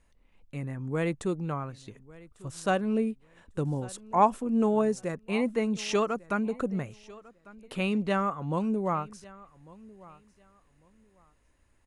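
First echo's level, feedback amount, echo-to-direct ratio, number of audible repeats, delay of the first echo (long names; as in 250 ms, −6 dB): −21.5 dB, 22%, −21.5 dB, 2, 1,148 ms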